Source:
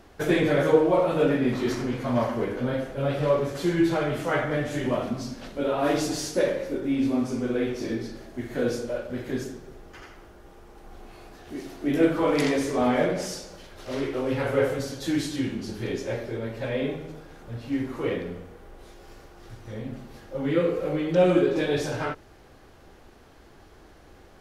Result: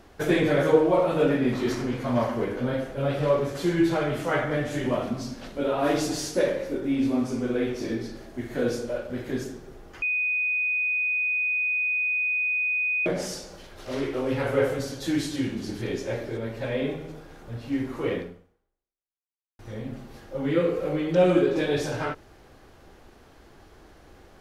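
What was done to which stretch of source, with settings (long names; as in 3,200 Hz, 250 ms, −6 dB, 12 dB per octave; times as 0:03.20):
0:10.02–0:13.06: beep over 2,490 Hz −22.5 dBFS
0:14.77–0:15.25: delay throw 560 ms, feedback 40%, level −16 dB
0:18.20–0:19.59: fade out exponential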